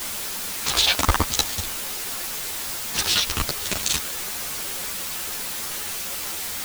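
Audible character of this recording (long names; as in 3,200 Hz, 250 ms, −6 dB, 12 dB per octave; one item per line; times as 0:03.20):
sample-and-hold tremolo, depth 85%
a quantiser's noise floor 6 bits, dither triangular
a shimmering, thickened sound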